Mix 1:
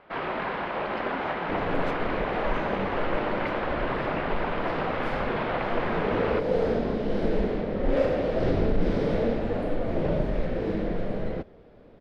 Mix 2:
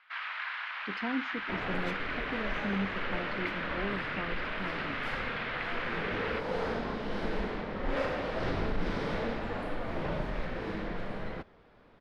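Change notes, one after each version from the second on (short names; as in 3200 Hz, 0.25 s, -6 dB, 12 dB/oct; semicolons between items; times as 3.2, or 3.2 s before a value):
speech +6.0 dB; first sound: add HPF 1400 Hz 24 dB/oct; second sound: add resonant low shelf 760 Hz -8 dB, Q 1.5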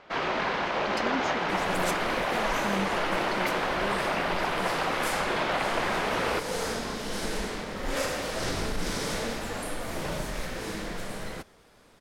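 first sound: remove HPF 1400 Hz 24 dB/oct; master: remove air absorption 360 m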